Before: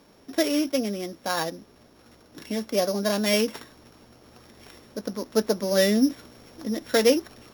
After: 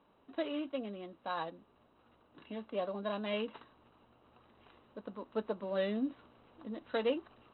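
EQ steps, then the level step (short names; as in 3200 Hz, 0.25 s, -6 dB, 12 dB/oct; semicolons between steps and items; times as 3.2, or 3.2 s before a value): rippled Chebyshev low-pass 4000 Hz, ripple 9 dB; air absorption 150 m; -5.5 dB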